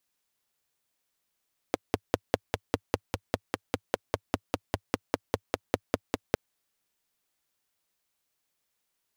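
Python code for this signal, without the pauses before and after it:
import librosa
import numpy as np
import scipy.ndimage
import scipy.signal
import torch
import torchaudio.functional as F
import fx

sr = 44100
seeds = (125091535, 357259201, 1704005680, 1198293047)

y = fx.engine_single(sr, seeds[0], length_s=4.61, rpm=600, resonances_hz=(100.0, 280.0, 450.0))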